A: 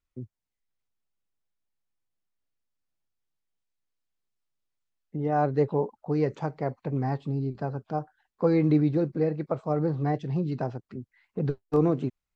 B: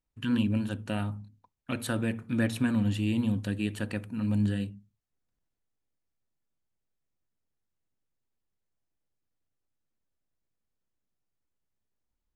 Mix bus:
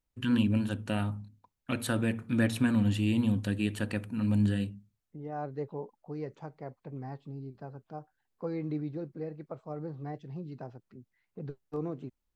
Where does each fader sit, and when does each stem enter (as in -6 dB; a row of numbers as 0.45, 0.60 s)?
-12.5, +0.5 dB; 0.00, 0.00 s